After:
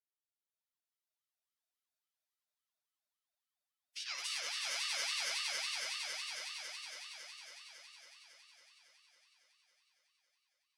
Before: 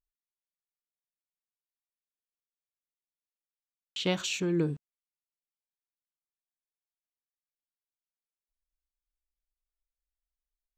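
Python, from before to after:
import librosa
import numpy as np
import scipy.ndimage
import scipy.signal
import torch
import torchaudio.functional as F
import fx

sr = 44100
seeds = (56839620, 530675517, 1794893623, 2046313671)

y = scipy.signal.sosfilt(scipy.signal.butter(16, 1600.0, 'highpass', fs=sr, output='sos'), x)
y = fx.pitch_keep_formants(y, sr, semitones=-3.5)
y = y + 0.71 * np.pad(y, (int(7.4 * sr / 1000.0), 0))[:len(y)]
y = fx.echo_swell(y, sr, ms=92, loudest=8, wet_db=-3.0)
y = fx.rev_spring(y, sr, rt60_s=1.9, pass_ms=(32, 57), chirp_ms=60, drr_db=-2.5)
y = fx.formant_shift(y, sr, semitones=4)
y = fx.ring_lfo(y, sr, carrier_hz=1200.0, swing_pct=30, hz=3.6)
y = y * 10.0 ** (-6.5 / 20.0)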